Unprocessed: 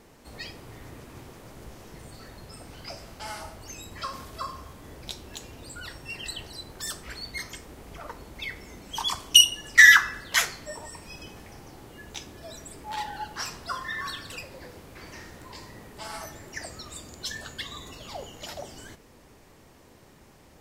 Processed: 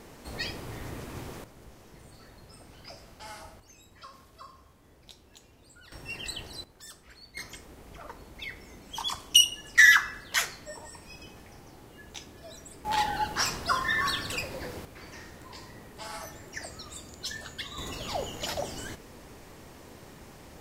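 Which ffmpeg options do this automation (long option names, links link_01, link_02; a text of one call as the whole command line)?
ffmpeg -i in.wav -af "asetnsamples=nb_out_samples=441:pad=0,asendcmd='1.44 volume volume -6.5dB;3.6 volume volume -13.5dB;5.92 volume volume -1dB;6.64 volume volume -13dB;7.37 volume volume -4dB;12.85 volume volume 6dB;14.85 volume volume -2dB;17.78 volume volume 5.5dB',volume=5dB" out.wav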